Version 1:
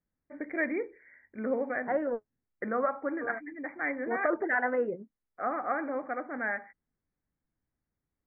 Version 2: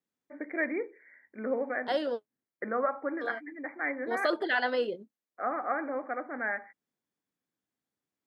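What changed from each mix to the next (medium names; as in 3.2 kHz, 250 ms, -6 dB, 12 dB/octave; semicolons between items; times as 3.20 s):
second voice: remove steep low-pass 2.2 kHz 72 dB/octave; master: add high-pass 230 Hz 12 dB/octave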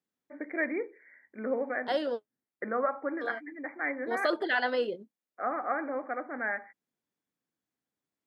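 no change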